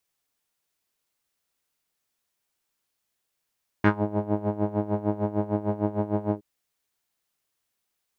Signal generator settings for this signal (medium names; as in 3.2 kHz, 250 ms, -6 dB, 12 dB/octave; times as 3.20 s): synth patch with tremolo G#3, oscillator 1 saw, oscillator 2 square, interval +7 st, detune 24 cents, sub -7 dB, filter lowpass, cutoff 340 Hz, Q 2.4, filter envelope 2.5 oct, filter decay 0.17 s, attack 1.8 ms, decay 0.11 s, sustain -8 dB, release 0.06 s, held 2.51 s, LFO 6.6 Hz, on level 16 dB